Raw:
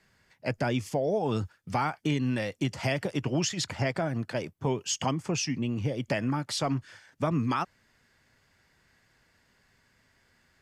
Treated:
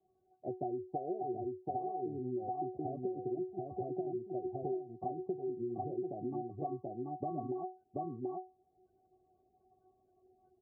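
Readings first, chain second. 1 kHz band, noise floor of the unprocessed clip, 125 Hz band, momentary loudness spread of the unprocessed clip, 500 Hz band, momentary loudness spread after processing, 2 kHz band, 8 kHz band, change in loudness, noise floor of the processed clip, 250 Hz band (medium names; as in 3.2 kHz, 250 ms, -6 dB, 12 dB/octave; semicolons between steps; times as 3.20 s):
-5.5 dB, -68 dBFS, -16.5 dB, 5 LU, -5.5 dB, 4 LU, under -40 dB, under -40 dB, -9.5 dB, -75 dBFS, -9.5 dB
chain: inharmonic resonator 370 Hz, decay 0.28 s, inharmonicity 0.002; on a send: delay 733 ms -4 dB; on the sum: level rider gain up to 4 dB; in parallel at -1 dB: peak limiter -37.5 dBFS, peak gain reduction 10.5 dB; on the sum: transient shaper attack +3 dB, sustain -3 dB; Chebyshev low-pass 730 Hz, order 4; compression 12:1, threshold -41 dBFS, peak gain reduction 12.5 dB; spectral gate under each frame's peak -30 dB strong; high-pass 76 Hz; tape noise reduction on one side only encoder only; trim +7 dB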